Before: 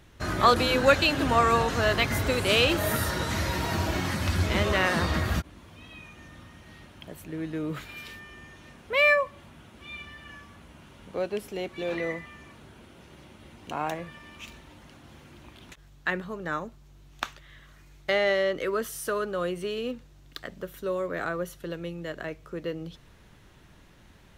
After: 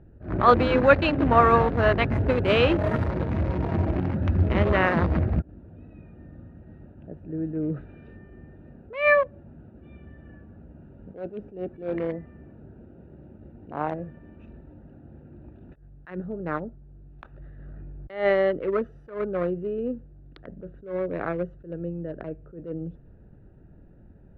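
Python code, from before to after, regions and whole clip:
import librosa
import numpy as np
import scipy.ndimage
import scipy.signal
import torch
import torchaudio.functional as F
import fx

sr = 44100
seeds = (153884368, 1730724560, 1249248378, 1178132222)

y = fx.chain(x, sr, fx.over_compress(threshold_db=-53.0, ratio=-1.0),
    fx.leveller(passes=1),
    fx.backlash(play_db=-50.5), at=(17.26, 18.1))
y = fx.wiener(y, sr, points=41)
y = scipy.signal.sosfilt(scipy.signal.butter(2, 1800.0, 'lowpass', fs=sr, output='sos'), y)
y = fx.attack_slew(y, sr, db_per_s=150.0)
y = y * 10.0 ** (5.5 / 20.0)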